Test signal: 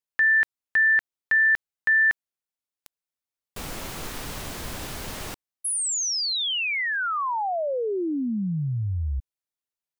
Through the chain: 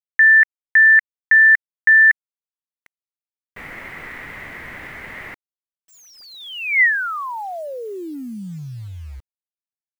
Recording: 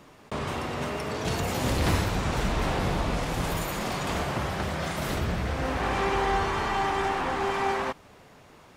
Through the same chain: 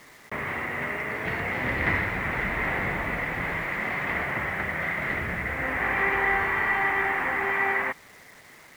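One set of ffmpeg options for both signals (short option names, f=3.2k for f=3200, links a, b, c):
-af "lowpass=f=2k:t=q:w=8.2,lowshelf=f=74:g=-7.5,acrusher=bits=7:mix=0:aa=0.000001,volume=-3.5dB"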